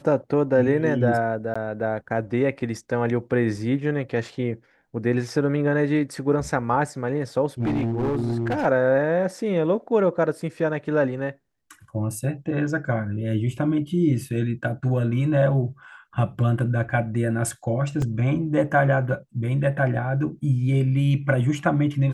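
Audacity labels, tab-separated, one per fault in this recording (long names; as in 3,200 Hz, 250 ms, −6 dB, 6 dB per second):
1.540000	1.550000	drop-out 15 ms
7.600000	8.660000	clipping −20 dBFS
18.020000	18.020000	drop-out 2.4 ms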